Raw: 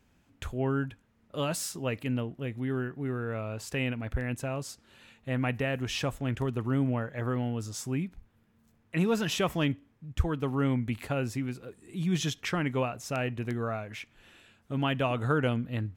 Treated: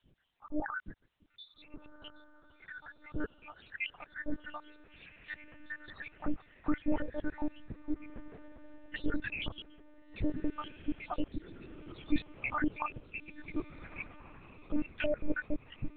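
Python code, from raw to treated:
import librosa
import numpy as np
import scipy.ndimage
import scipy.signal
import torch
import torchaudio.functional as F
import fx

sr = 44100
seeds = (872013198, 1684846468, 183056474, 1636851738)

y = fx.spec_dropout(x, sr, seeds[0], share_pct=82)
y = fx.dmg_noise_colour(y, sr, seeds[1], colour='white', level_db=-79.0)
y = fx.echo_diffused(y, sr, ms=1414, feedback_pct=48, wet_db=-15.5)
y = fx.lpc_monotone(y, sr, seeds[2], pitch_hz=300.0, order=10)
y = F.gain(torch.from_numpy(y), 2.5).numpy()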